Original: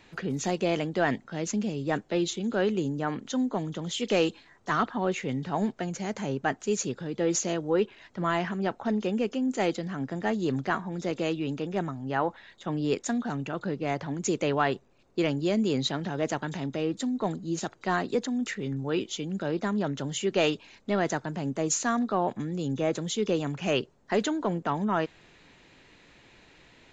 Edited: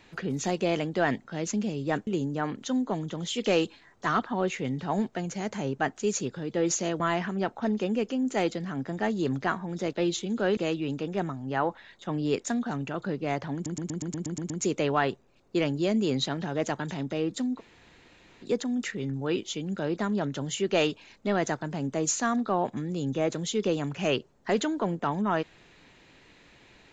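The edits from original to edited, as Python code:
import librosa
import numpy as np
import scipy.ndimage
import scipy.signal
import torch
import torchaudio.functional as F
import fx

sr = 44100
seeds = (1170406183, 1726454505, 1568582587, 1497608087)

y = fx.edit(x, sr, fx.move(start_s=2.07, length_s=0.64, to_s=11.16),
    fx.cut(start_s=7.64, length_s=0.59),
    fx.stutter(start_s=14.13, slice_s=0.12, count=9),
    fx.room_tone_fill(start_s=17.21, length_s=0.86, crossfade_s=0.06), tone=tone)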